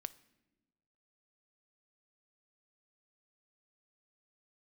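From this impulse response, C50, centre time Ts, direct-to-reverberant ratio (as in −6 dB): 18.5 dB, 3 ms, 15.5 dB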